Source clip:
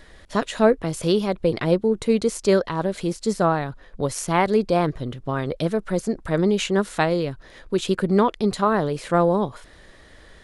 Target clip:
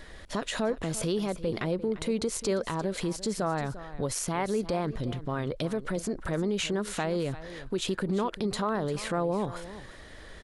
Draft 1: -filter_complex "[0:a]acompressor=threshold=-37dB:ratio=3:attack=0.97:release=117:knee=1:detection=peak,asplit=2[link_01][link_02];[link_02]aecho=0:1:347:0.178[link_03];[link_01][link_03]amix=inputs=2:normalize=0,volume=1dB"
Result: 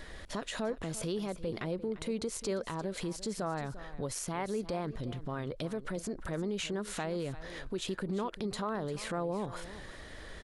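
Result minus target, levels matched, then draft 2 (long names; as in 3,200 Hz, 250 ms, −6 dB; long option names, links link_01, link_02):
downward compressor: peak gain reduction +6 dB
-filter_complex "[0:a]acompressor=threshold=-28dB:ratio=3:attack=0.97:release=117:knee=1:detection=peak,asplit=2[link_01][link_02];[link_02]aecho=0:1:347:0.178[link_03];[link_01][link_03]amix=inputs=2:normalize=0,volume=1dB"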